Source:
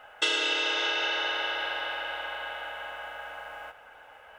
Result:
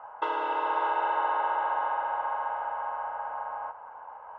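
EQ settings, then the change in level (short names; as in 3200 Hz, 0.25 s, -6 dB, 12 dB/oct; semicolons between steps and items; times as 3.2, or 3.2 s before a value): HPF 88 Hz 6 dB/oct; synth low-pass 990 Hz, resonance Q 11; bell 320 Hz -2 dB; -1.5 dB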